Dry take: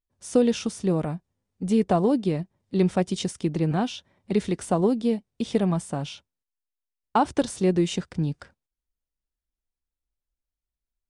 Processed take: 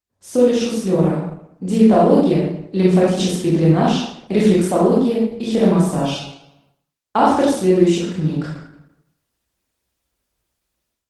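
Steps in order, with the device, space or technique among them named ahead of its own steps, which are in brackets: far-field microphone of a smart speaker (reverb RT60 0.75 s, pre-delay 20 ms, DRR -6.5 dB; HPF 110 Hz 12 dB/oct; AGC gain up to 15.5 dB; gain -1 dB; Opus 16 kbps 48000 Hz)

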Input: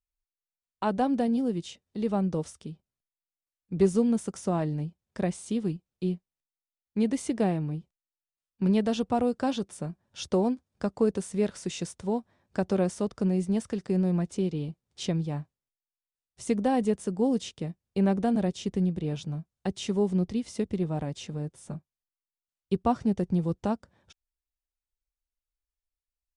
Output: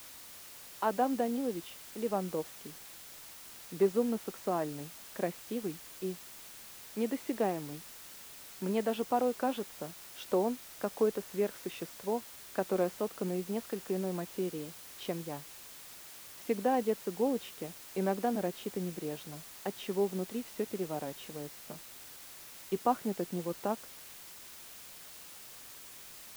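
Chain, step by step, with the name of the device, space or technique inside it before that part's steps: wax cylinder (BPF 340–2500 Hz; wow and flutter; white noise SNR 14 dB); gain -1.5 dB

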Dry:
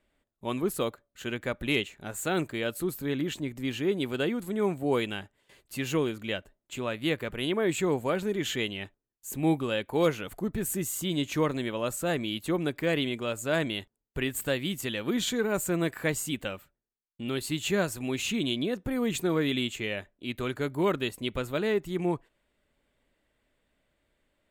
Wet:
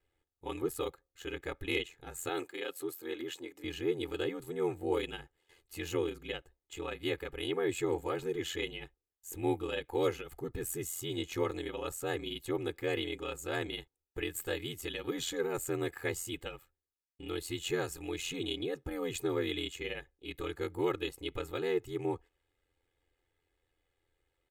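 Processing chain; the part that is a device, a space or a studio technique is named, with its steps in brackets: 2.29–3.64 Bessel high-pass 330 Hz, order 8; ring-modulated robot voice (ring modulator 43 Hz; comb 2.4 ms, depth 90%); gain -6 dB

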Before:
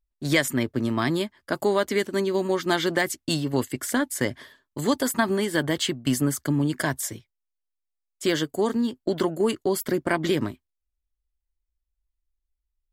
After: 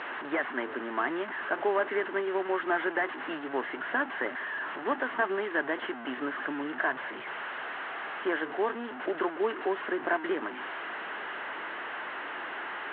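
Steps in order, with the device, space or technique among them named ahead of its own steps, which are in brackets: digital answering machine (BPF 360–3000 Hz; delta modulation 16 kbps, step -29.5 dBFS; speaker cabinet 370–4000 Hz, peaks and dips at 530 Hz -6 dB, 1600 Hz +5 dB, 2400 Hz -9 dB, 3500 Hz -6 dB)

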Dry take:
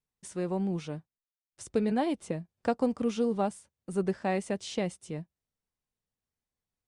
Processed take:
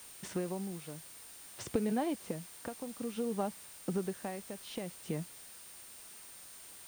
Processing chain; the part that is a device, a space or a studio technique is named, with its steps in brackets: medium wave at night (BPF 100–3900 Hz; compressor 5:1, threshold -42 dBFS, peak gain reduction 18 dB; tremolo 0.55 Hz, depth 70%; whine 9000 Hz -64 dBFS; white noise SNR 14 dB); gain +10.5 dB

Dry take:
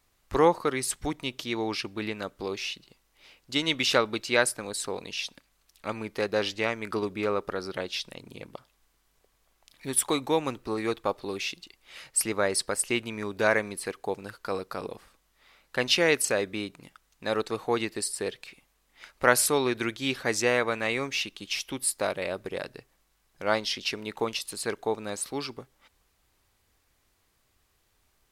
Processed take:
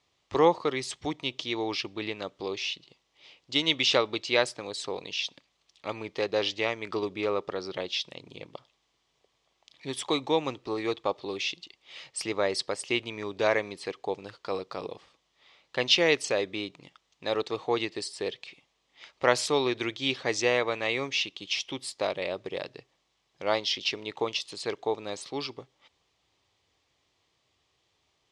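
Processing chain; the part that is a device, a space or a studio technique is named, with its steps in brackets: car door speaker (speaker cabinet 110–6500 Hz, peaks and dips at 220 Hz -8 dB, 1500 Hz -9 dB, 3300 Hz +5 dB)

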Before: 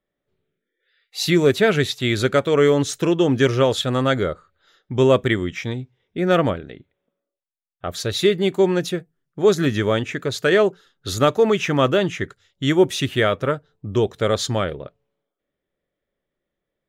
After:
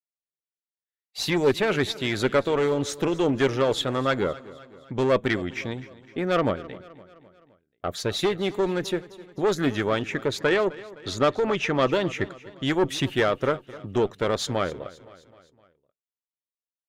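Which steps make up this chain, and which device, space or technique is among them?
expander -40 dBFS; 10.39–11.91 LPF 6800 Hz 12 dB/oct; tube preamp driven hard (tube stage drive 13 dB, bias 0.4; low shelf 170 Hz -5 dB; high shelf 3600 Hz -7 dB); harmonic-percussive split percussive +6 dB; feedback echo 0.258 s, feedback 54%, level -19 dB; gain -4 dB

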